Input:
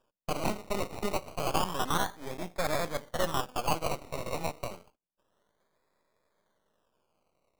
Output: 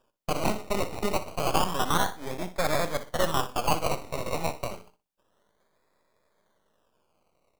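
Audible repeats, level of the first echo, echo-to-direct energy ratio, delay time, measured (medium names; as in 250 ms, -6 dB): 2, -13.5 dB, -13.5 dB, 61 ms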